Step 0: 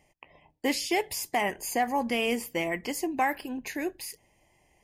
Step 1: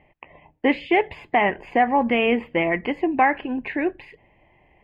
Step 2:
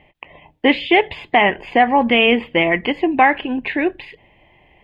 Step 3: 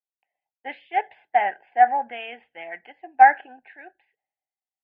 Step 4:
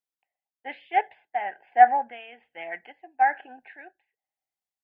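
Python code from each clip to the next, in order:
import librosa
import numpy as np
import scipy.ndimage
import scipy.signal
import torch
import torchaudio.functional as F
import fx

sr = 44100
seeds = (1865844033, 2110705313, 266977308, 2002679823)

y1 = scipy.signal.sosfilt(scipy.signal.cheby2(4, 40, 5300.0, 'lowpass', fs=sr, output='sos'), x)
y1 = y1 * librosa.db_to_amplitude(8.5)
y2 = fx.peak_eq(y1, sr, hz=3500.0, db=11.5, octaves=0.69)
y2 = fx.end_taper(y2, sr, db_per_s=550.0)
y2 = y2 * librosa.db_to_amplitude(4.5)
y3 = fx.double_bandpass(y2, sr, hz=1100.0, octaves=1.0)
y3 = fx.band_widen(y3, sr, depth_pct=100)
y3 = y3 * librosa.db_to_amplitude(-5.5)
y4 = y3 * (1.0 - 0.69 / 2.0 + 0.69 / 2.0 * np.cos(2.0 * np.pi * 1.1 * (np.arange(len(y3)) / sr)))
y4 = y4 * librosa.db_to_amplitude(1.0)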